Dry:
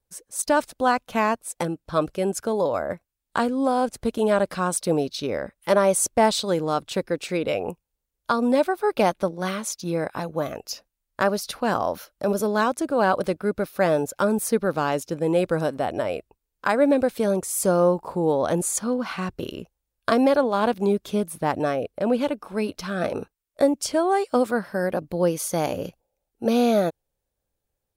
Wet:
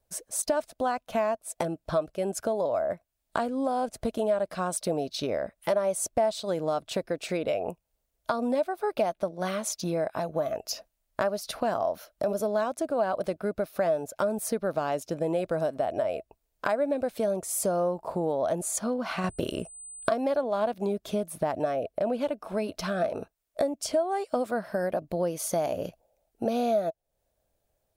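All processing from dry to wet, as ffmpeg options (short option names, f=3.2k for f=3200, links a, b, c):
-filter_complex "[0:a]asettb=1/sr,asplit=3[a][b][c];[a]atrim=end=19.244[d];[b]atrim=start=19.24:end=20.09,asetpts=PTS-STARTPTS,afade=t=in:d=0.004:c=qsin,afade=t=out:st=0.846:d=0.004:c=qsin,acontrast=81,aeval=exprs='val(0)+0.00631*sin(2*PI*8100*n/s)':c=same[e];[c]atrim=start=20.086[f];[d][e]acrossfade=d=0.004:c1=hsin:c2=qsin[g];[g][f]acrossfade=d=0.004:c1=qsin:c2=hsin,equalizer=f=650:w=5.4:g=13.5,acompressor=threshold=-33dB:ratio=3,volume=3.5dB"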